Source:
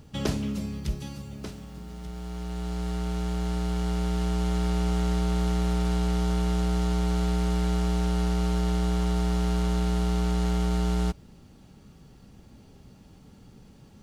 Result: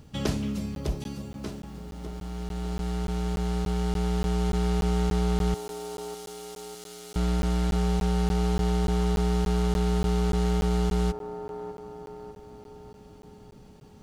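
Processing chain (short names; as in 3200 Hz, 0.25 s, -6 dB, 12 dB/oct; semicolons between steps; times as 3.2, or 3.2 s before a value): 5.54–7.16 differentiator; band-limited delay 0.602 s, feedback 53%, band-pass 550 Hz, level -5 dB; crackling interface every 0.29 s, samples 512, zero, from 0.75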